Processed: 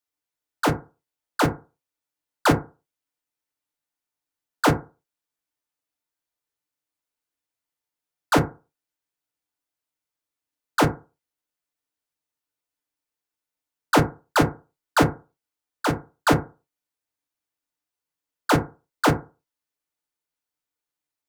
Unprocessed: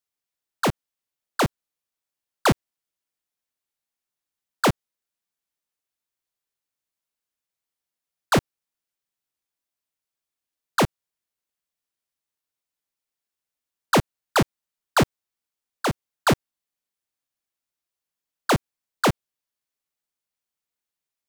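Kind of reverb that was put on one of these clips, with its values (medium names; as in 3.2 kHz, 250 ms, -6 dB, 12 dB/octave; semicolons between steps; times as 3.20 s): FDN reverb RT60 0.31 s, low-frequency decay 0.9×, high-frequency decay 0.35×, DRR 1 dB; trim -2 dB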